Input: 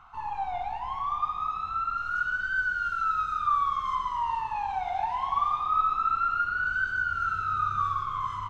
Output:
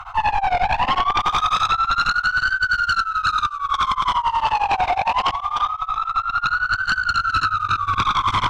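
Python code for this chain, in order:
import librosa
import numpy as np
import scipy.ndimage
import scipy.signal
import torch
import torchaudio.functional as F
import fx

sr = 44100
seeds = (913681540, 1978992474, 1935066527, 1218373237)

y = scipy.signal.sosfilt(scipy.signal.cheby1(3, 1.0, [110.0, 700.0], 'bandstop', fs=sr, output='sos'), x)
y = fx.echo_feedback(y, sr, ms=461, feedback_pct=40, wet_db=-10.0)
y = fx.over_compress(y, sr, threshold_db=-32.0, ratio=-0.5)
y = fx.high_shelf(y, sr, hz=4000.0, db=10.5, at=(1.2, 1.67))
y = fx.echo_wet_highpass(y, sr, ms=252, feedback_pct=58, hz=2800.0, wet_db=-15.0)
y = fx.fold_sine(y, sr, drive_db=15, ceiling_db=-13.0)
y = y * np.abs(np.cos(np.pi * 11.0 * np.arange(len(y)) / sr))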